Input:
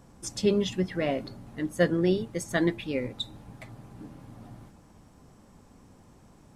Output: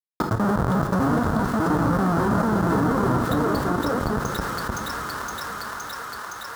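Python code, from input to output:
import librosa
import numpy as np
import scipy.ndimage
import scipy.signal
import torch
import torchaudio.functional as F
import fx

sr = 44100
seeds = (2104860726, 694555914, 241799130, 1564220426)

y = fx.local_reverse(x, sr, ms=198.0)
y = fx.graphic_eq_10(y, sr, hz=(125, 250, 1000, 2000, 4000), db=(12, 10, -9, -5, 9))
y = fx.schmitt(y, sr, flips_db=-24.0)
y = fx.echo_pitch(y, sr, ms=760, semitones=3, count=3, db_per_echo=-3.0)
y = scipy.signal.sosfilt(scipy.signal.butter(2, 80.0, 'highpass', fs=sr, output='sos'), y)
y = fx.high_shelf_res(y, sr, hz=1800.0, db=-10.0, q=3.0)
y = fx.echo_wet_highpass(y, sr, ms=516, feedback_pct=51, hz=1800.0, wet_db=-7.5)
y = fx.rev_double_slope(y, sr, seeds[0], early_s=0.24, late_s=3.2, knee_db=-18, drr_db=8.5)
y = fx.env_flatten(y, sr, amount_pct=70)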